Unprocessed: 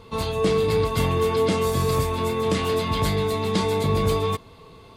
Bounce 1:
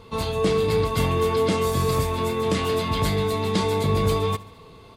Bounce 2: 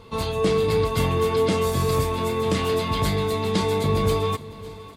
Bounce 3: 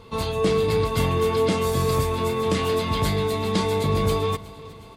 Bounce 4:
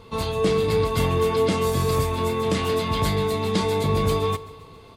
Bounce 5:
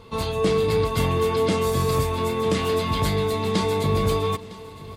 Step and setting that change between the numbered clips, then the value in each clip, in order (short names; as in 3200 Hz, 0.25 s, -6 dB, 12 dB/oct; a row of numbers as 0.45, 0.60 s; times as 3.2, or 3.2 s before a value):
feedback echo, time: 71, 554, 367, 136, 957 ms